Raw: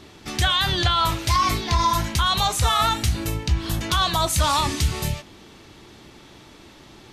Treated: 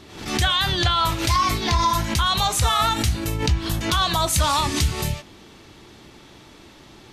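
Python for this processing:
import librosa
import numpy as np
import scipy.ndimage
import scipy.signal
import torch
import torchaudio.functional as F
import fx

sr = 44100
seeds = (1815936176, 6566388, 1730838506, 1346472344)

y = fx.pre_swell(x, sr, db_per_s=82.0)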